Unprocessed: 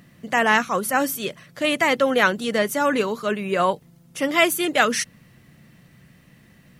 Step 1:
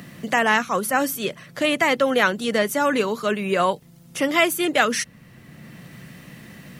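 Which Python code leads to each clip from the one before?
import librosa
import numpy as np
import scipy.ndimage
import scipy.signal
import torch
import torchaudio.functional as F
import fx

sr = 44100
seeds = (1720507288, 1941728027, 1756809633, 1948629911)

y = fx.band_squash(x, sr, depth_pct=40)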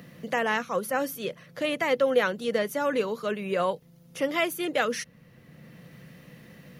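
y = fx.graphic_eq_31(x, sr, hz=(160, 500, 8000), db=(4, 9, -8))
y = F.gain(torch.from_numpy(y), -8.5).numpy()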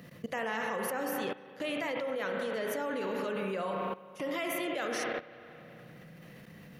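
y = fx.rev_spring(x, sr, rt60_s=2.7, pass_ms=(31, 55), chirp_ms=55, drr_db=3.0)
y = fx.level_steps(y, sr, step_db=17)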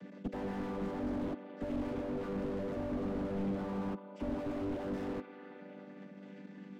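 y = fx.chord_vocoder(x, sr, chord='major triad', root=55)
y = fx.slew_limit(y, sr, full_power_hz=4.7)
y = F.gain(torch.from_numpy(y), 3.0).numpy()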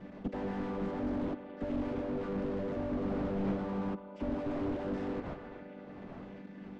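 y = fx.dmg_wind(x, sr, seeds[0], corner_hz=600.0, level_db=-52.0)
y = fx.air_absorb(y, sr, metres=76.0)
y = F.gain(torch.from_numpy(y), 2.0).numpy()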